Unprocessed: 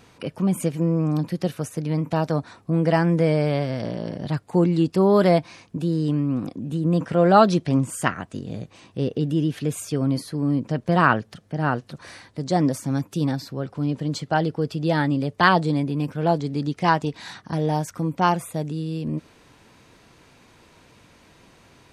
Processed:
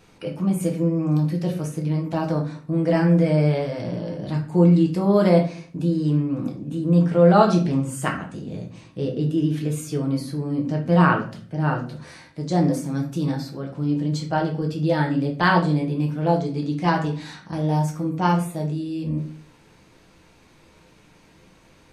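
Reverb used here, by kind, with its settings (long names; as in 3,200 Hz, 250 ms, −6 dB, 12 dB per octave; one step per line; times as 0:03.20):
rectangular room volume 36 cubic metres, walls mixed, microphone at 0.59 metres
level −4.5 dB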